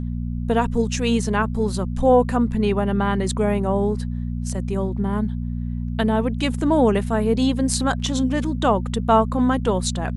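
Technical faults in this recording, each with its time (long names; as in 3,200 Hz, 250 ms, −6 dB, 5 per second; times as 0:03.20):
mains hum 60 Hz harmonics 4 −26 dBFS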